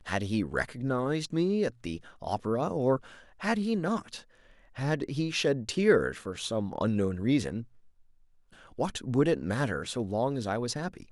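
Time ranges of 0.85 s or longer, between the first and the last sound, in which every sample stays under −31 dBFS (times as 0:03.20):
0:07.61–0:08.79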